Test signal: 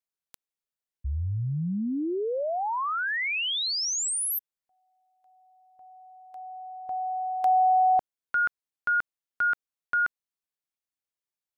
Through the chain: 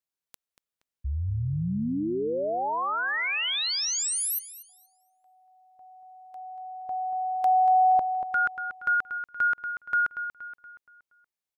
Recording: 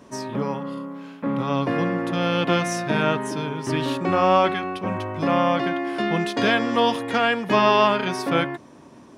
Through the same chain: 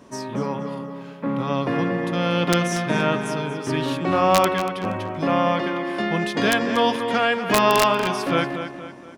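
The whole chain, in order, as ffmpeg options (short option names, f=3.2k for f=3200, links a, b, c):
-filter_complex "[0:a]aeval=exprs='(mod(2.24*val(0)+1,2)-1)/2.24':c=same,asplit=2[a][b];[b]adelay=236,lowpass=f=4.8k:p=1,volume=-9dB,asplit=2[c][d];[d]adelay=236,lowpass=f=4.8k:p=1,volume=0.45,asplit=2[e][f];[f]adelay=236,lowpass=f=4.8k:p=1,volume=0.45,asplit=2[g][h];[h]adelay=236,lowpass=f=4.8k:p=1,volume=0.45,asplit=2[i][j];[j]adelay=236,lowpass=f=4.8k:p=1,volume=0.45[k];[c][e][g][i][k]amix=inputs=5:normalize=0[l];[a][l]amix=inputs=2:normalize=0"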